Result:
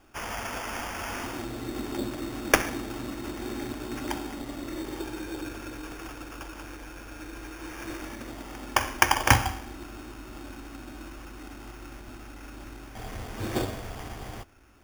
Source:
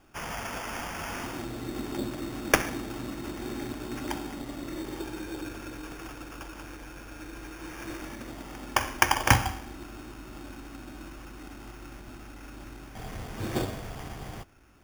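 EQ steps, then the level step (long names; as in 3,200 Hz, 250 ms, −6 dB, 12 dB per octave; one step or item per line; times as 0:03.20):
parametric band 160 Hz −13 dB 0.28 octaves
+1.5 dB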